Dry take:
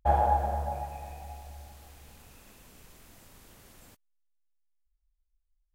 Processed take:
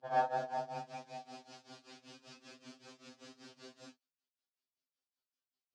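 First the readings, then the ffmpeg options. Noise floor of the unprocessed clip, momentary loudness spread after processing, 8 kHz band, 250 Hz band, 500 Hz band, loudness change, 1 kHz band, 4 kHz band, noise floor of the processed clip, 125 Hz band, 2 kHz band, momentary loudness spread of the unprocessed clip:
-77 dBFS, 20 LU, -6.0 dB, -5.5 dB, -6.0 dB, -9.0 dB, -8.5 dB, +2.5 dB, under -85 dBFS, -20.5 dB, -0.5 dB, 23 LU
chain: -af "tremolo=f=5.2:d=0.92,highpass=f=180:w=0.5412,highpass=f=180:w=1.3066,equalizer=f=260:t=q:w=4:g=4,equalizer=f=920:t=q:w=4:g=-6,equalizer=f=2k:t=q:w=4:g=-6,equalizer=f=4.8k:t=q:w=4:g=5,lowpass=f=5.9k:w=0.5412,lowpass=f=5.9k:w=1.3066,afftfilt=real='re*2.45*eq(mod(b,6),0)':imag='im*2.45*eq(mod(b,6),0)':win_size=2048:overlap=0.75,volume=8dB"

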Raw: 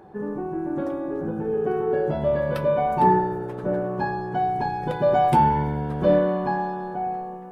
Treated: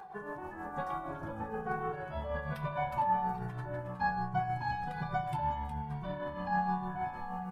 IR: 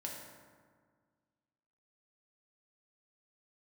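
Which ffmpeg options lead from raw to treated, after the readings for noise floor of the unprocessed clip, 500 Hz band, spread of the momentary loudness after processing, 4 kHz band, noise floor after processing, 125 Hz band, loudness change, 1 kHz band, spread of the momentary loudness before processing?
-34 dBFS, -18.5 dB, 8 LU, -9.0 dB, -44 dBFS, -10.0 dB, -12.5 dB, -10.0 dB, 10 LU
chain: -filter_complex "[0:a]alimiter=limit=-17.5dB:level=0:latency=1,asubboost=boost=11:cutoff=160,bandreject=f=105.3:t=h:w=4,bandreject=f=210.6:t=h:w=4,bandreject=f=315.9:t=h:w=4,bandreject=f=421.2:t=h:w=4,bandreject=f=526.5:t=h:w=4,bandreject=f=631.8:t=h:w=4,bandreject=f=737.1:t=h:w=4,bandreject=f=842.4:t=h:w=4,bandreject=f=947.7:t=h:w=4,bandreject=f=1.053k:t=h:w=4,bandreject=f=1.1583k:t=h:w=4,bandreject=f=1.2636k:t=h:w=4,bandreject=f=1.3689k:t=h:w=4,bandreject=f=1.4742k:t=h:w=4,bandreject=f=1.5795k:t=h:w=4,bandreject=f=1.6848k:t=h:w=4,bandreject=f=1.7901k:t=h:w=4,bandreject=f=1.8954k:t=h:w=4,bandreject=f=2.0007k:t=h:w=4,bandreject=f=2.106k:t=h:w=4,bandreject=f=2.2113k:t=h:w=4,bandreject=f=2.3166k:t=h:w=4,bandreject=f=2.4219k:t=h:w=4,bandreject=f=2.5272k:t=h:w=4,bandreject=f=2.6325k:t=h:w=4,bandreject=f=2.7378k:t=h:w=4,bandreject=f=2.8431k:t=h:w=4,bandreject=f=2.9484k:t=h:w=4,bandreject=f=3.0537k:t=h:w=4,bandreject=f=3.159k:t=h:w=4,bandreject=f=3.2643k:t=h:w=4,bandreject=f=3.3696k:t=h:w=4,bandreject=f=3.4749k:t=h:w=4,bandreject=f=3.5802k:t=h:w=4,bandreject=f=3.6855k:t=h:w=4,bandreject=f=3.7908k:t=h:w=4,bandreject=f=3.8961k:t=h:w=4,bandreject=f=4.0014k:t=h:w=4,bandreject=f=4.1067k:t=h:w=4,areverse,acompressor=threshold=-26dB:ratio=5,areverse,tremolo=f=6.4:d=0.57,lowshelf=f=560:t=q:w=1.5:g=-13,asplit=2[a][b];[b]aecho=0:1:364:0.376[c];[a][c]amix=inputs=2:normalize=0,asplit=2[d][e];[e]adelay=2.1,afreqshift=-1.2[f];[d][f]amix=inputs=2:normalize=1,volume=7dB"

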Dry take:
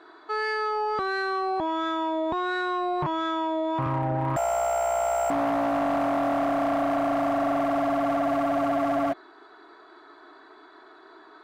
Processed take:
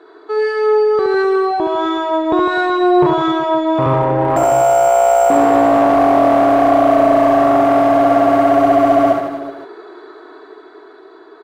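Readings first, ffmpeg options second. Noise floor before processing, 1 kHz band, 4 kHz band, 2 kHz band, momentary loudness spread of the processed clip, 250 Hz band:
-51 dBFS, +12.5 dB, +9.0 dB, +9.0 dB, 6 LU, +12.5 dB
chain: -filter_complex "[0:a]equalizer=f=430:t=o:w=0.68:g=13,dynaudnorm=f=300:g=11:m=6.5dB,asplit=2[a][b];[b]aecho=0:1:70|154|254.8|375.8|520.9:0.631|0.398|0.251|0.158|0.1[c];[a][c]amix=inputs=2:normalize=0,volume=1.5dB"

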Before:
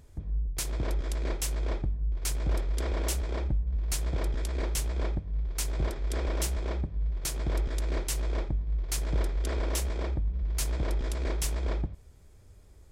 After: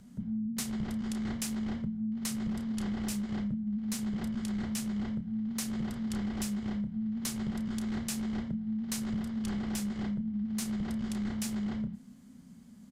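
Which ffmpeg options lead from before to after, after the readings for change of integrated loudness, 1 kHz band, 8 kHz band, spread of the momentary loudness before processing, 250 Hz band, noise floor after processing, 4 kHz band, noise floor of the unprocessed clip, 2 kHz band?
-2.5 dB, -5.5 dB, -4.0 dB, 2 LU, +11.0 dB, -53 dBFS, -3.5 dB, -53 dBFS, -4.5 dB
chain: -filter_complex "[0:a]asplit=2[a][b];[b]adelay=31,volume=-10dB[c];[a][c]amix=inputs=2:normalize=0,afreqshift=-270,acompressor=threshold=-31dB:ratio=6"

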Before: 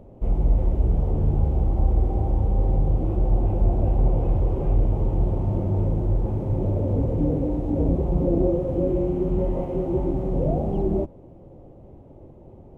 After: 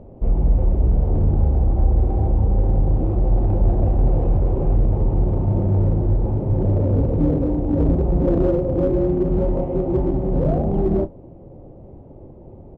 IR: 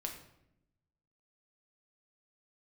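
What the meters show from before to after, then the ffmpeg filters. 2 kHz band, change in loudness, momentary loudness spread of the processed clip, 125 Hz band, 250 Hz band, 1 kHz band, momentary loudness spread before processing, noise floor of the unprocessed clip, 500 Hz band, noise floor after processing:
n/a, +4.0 dB, 2 LU, +4.0 dB, +4.0 dB, +3.0 dB, 3 LU, -46 dBFS, +3.5 dB, -42 dBFS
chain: -filter_complex "[0:a]lowpass=f=1.2k:p=1,asplit=2[a][b];[b]asoftclip=type=hard:threshold=-19.5dB,volume=-3dB[c];[a][c]amix=inputs=2:normalize=0,asplit=2[d][e];[e]adelay=31,volume=-13.5dB[f];[d][f]amix=inputs=2:normalize=0"

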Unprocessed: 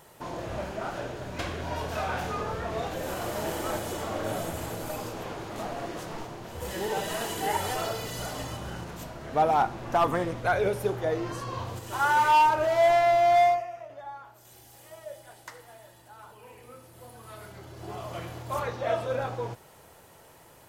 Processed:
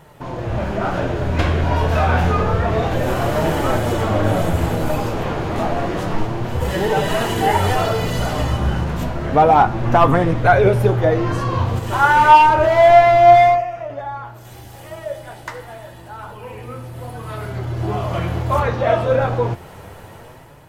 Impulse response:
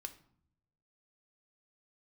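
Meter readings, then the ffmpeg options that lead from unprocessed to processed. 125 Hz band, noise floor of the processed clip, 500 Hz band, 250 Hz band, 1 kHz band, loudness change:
+18.5 dB, -39 dBFS, +11.5 dB, +14.5 dB, +11.0 dB, +11.5 dB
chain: -filter_complex "[0:a]lowshelf=f=110:g=5.5,asplit=2[a][b];[b]acompressor=threshold=-36dB:ratio=6,volume=-3dB[c];[a][c]amix=inputs=2:normalize=0,flanger=delay=6.3:depth=8:regen=58:speed=0.29:shape=triangular,dynaudnorm=f=230:g=5:m=8dB,bass=f=250:g=4,treble=f=4k:g=-9,volume=6dB"

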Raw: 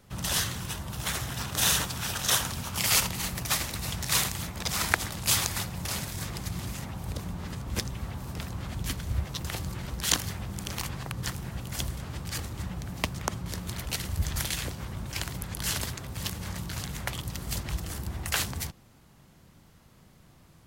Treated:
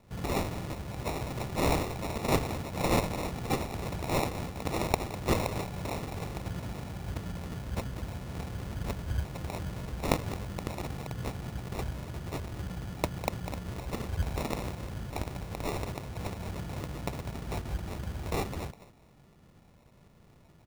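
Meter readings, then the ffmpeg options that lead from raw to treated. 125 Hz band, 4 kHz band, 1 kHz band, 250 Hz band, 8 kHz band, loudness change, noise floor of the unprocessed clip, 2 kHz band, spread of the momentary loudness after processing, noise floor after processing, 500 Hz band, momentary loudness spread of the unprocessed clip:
-1.0 dB, -12.0 dB, +1.5 dB, +2.5 dB, -15.0 dB, -4.5 dB, -57 dBFS, -7.0 dB, 9 LU, -59 dBFS, +7.5 dB, 11 LU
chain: -filter_complex "[0:a]asplit=2[a][b];[b]adelay=200,highpass=300,lowpass=3.4k,asoftclip=type=hard:threshold=-10.5dB,volume=-9dB[c];[a][c]amix=inputs=2:normalize=0,acrusher=samples=28:mix=1:aa=0.000001,volume=-2dB"

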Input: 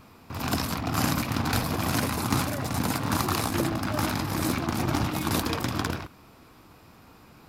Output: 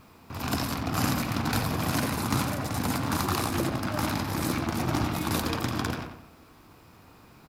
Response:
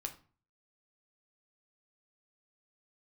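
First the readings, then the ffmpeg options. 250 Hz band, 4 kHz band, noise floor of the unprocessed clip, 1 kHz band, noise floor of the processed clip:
-1.0 dB, -1.5 dB, -53 dBFS, -1.0 dB, -54 dBFS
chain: -filter_complex "[0:a]acrusher=bits=10:mix=0:aa=0.000001,asplit=2[a][b];[b]adelay=90,lowpass=f=3.7k:p=1,volume=-7dB,asplit=2[c][d];[d]adelay=90,lowpass=f=3.7k:p=1,volume=0.45,asplit=2[e][f];[f]adelay=90,lowpass=f=3.7k:p=1,volume=0.45,asplit=2[g][h];[h]adelay=90,lowpass=f=3.7k:p=1,volume=0.45,asplit=2[i][j];[j]adelay=90,lowpass=f=3.7k:p=1,volume=0.45[k];[a][c][e][g][i][k]amix=inputs=6:normalize=0,volume=-2dB"

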